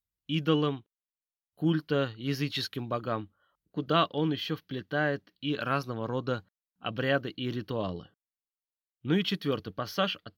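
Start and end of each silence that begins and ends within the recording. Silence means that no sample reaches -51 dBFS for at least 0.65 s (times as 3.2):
0.81–1.58
8.06–9.04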